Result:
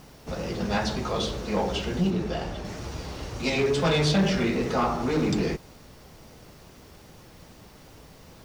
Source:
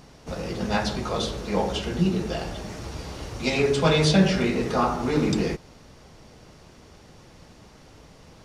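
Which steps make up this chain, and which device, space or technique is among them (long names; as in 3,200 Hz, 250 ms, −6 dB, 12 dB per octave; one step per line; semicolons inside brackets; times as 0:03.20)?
compact cassette (soft clipping −16.5 dBFS, distortion −14 dB; low-pass filter 8,800 Hz; tape wow and flutter; white noise bed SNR 33 dB)
0:02.10–0:02.65: high-shelf EQ 4,600 Hz −7 dB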